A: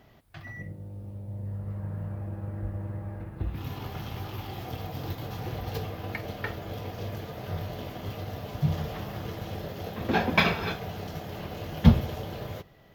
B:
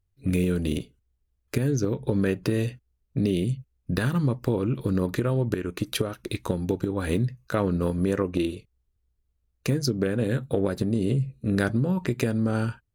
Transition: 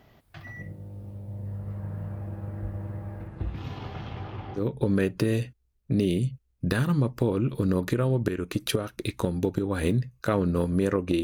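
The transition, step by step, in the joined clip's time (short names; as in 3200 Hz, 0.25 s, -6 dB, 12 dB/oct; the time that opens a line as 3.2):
A
3.27–4.62 LPF 9600 Hz -> 1600 Hz
4.58 switch to B from 1.84 s, crossfade 0.08 s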